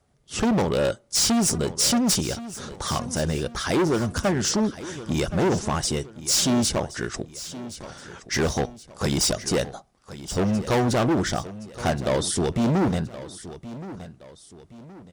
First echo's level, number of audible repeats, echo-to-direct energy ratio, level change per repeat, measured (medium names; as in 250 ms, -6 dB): -15.0 dB, 2, -14.5 dB, -8.0 dB